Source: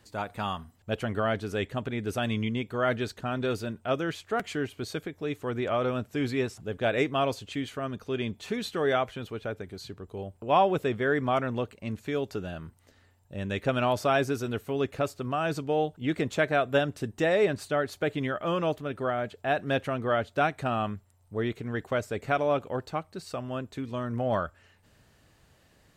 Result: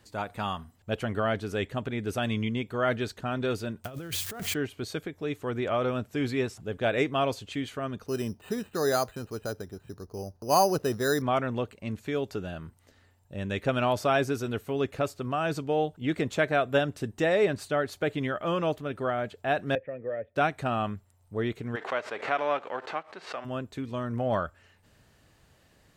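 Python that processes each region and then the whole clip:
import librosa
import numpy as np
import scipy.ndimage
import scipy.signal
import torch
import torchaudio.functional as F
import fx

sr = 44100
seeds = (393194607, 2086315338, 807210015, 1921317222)

y = fx.chain(x, sr, fx.crossing_spikes(level_db=-33.5),
    fx.peak_eq(hz=99.0, db=11.5, octaves=1.8),
    fx.over_compress(threshold_db=-36.0, ratio=-1.0), at=(3.84, 4.54))
y = fx.chain(y, sr, fx.peak_eq(hz=2200.0, db=-13.0, octaves=0.21),
    fx.resample_bad(factor=8, down='filtered', up='hold'), at=(8.06, 11.22))
y = fx.chain(y, sr, fx.formant_cascade(vowel='e'),
    fx.low_shelf(hz=300.0, db=7.5),
    fx.band_squash(depth_pct=40), at=(19.75, 20.36))
y = fx.envelope_flatten(y, sr, power=0.6, at=(21.75, 23.44), fade=0.02)
y = fx.bandpass_edges(y, sr, low_hz=460.0, high_hz=2100.0, at=(21.75, 23.44), fade=0.02)
y = fx.pre_swell(y, sr, db_per_s=130.0, at=(21.75, 23.44), fade=0.02)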